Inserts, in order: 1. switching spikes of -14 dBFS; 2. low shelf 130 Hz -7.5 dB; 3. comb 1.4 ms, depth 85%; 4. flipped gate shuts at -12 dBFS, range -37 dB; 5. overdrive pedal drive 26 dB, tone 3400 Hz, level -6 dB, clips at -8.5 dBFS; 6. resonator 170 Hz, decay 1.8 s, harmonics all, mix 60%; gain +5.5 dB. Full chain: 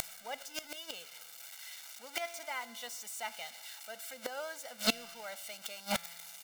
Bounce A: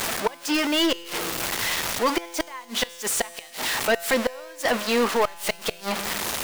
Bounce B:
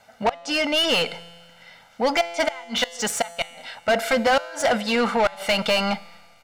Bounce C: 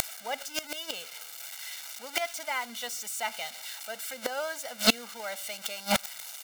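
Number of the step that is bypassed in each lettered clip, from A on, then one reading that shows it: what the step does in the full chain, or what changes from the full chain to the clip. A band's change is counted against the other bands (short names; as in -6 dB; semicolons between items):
3, 250 Hz band +4.0 dB; 1, 8 kHz band -9.0 dB; 6, loudness change +7.5 LU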